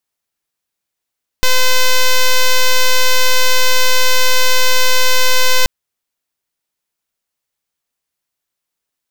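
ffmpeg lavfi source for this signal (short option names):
-f lavfi -i "aevalsrc='0.376*(2*lt(mod(511*t,1),0.05)-1)':d=4.23:s=44100"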